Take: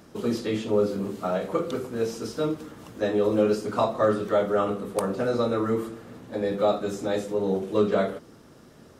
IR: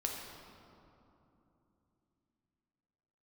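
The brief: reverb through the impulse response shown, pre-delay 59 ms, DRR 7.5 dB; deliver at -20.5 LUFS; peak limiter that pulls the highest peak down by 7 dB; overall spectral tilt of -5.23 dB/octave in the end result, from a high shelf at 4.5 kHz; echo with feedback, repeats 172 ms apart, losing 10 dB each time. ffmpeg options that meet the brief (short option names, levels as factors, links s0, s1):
-filter_complex "[0:a]highshelf=f=4500:g=7,alimiter=limit=0.15:level=0:latency=1,aecho=1:1:172|344|516|688:0.316|0.101|0.0324|0.0104,asplit=2[s0][s1];[1:a]atrim=start_sample=2205,adelay=59[s2];[s1][s2]afir=irnorm=-1:irlink=0,volume=0.316[s3];[s0][s3]amix=inputs=2:normalize=0,volume=2.11"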